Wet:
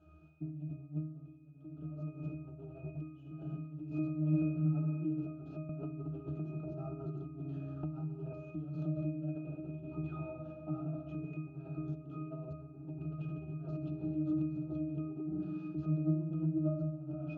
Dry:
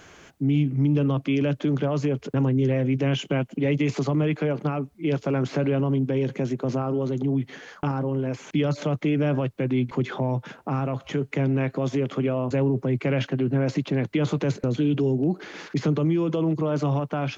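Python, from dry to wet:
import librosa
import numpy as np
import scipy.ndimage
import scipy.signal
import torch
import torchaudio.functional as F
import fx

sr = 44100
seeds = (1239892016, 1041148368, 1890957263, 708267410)

y = fx.leveller(x, sr, passes=2)
y = fx.peak_eq(y, sr, hz=1900.0, db=-14.5, octaves=0.57)
y = fx.rev_fdn(y, sr, rt60_s=1.7, lf_ratio=1.4, hf_ratio=0.9, size_ms=11.0, drr_db=2.0)
y = fx.over_compress(y, sr, threshold_db=-19.0, ratio=-0.5)
y = fx.peak_eq(y, sr, hz=4200.0, db=4.0, octaves=0.37)
y = fx.octave_resonator(y, sr, note='D#', decay_s=0.73)
y = fx.band_squash(y, sr, depth_pct=100, at=(5.69, 8.33))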